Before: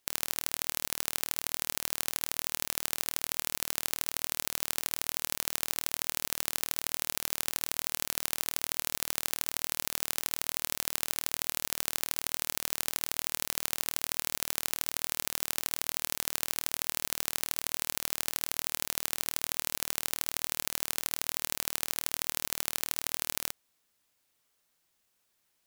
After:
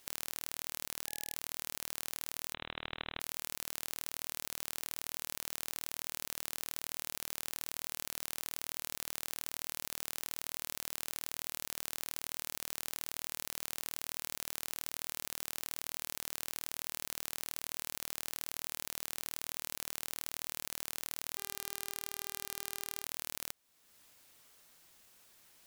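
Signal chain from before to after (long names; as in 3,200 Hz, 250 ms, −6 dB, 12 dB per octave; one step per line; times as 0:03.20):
0:02.54–0:03.20: voice inversion scrambler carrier 3,900 Hz
brickwall limiter −7 dBFS, peak gain reduction 5.5 dB
downward compressor 2 to 1, threshold −59 dBFS, peak gain reduction 16.5 dB
0:01.07–0:01.34: time-frequency box erased 820–1,700 Hz
0:21.37–0:23.03: hum with harmonics 400 Hz, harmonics 34, −78 dBFS −4 dB per octave
level +12 dB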